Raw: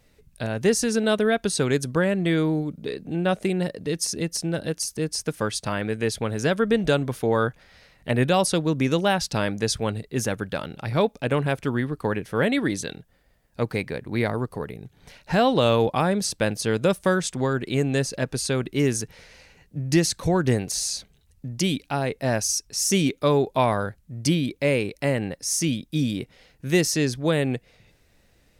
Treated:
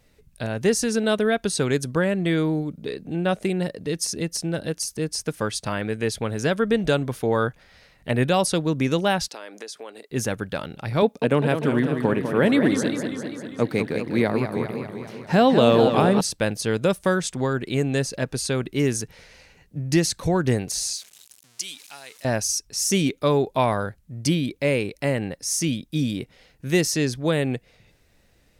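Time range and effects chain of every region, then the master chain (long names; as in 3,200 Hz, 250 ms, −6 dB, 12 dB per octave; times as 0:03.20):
0:09.28–0:10.11: high-pass filter 330 Hz 24 dB per octave + downward compressor 4 to 1, threshold −35 dBFS
0:11.02–0:16.21: high-pass filter 180 Hz + low-shelf EQ 380 Hz +8 dB + feedback echo with a swinging delay time 199 ms, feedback 66%, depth 158 cents, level −7.5 dB
0:20.93–0:22.25: converter with a step at zero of −33.5 dBFS + resonant band-pass 7,700 Hz, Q 0.82
whole clip: no processing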